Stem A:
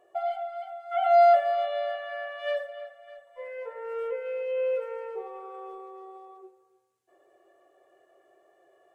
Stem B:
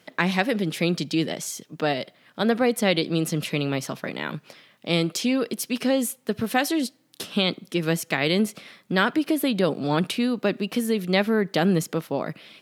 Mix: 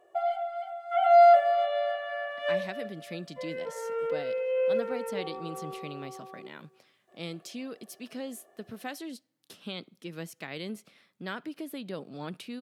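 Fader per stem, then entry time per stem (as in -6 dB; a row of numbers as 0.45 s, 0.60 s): +1.0 dB, -16.0 dB; 0.00 s, 2.30 s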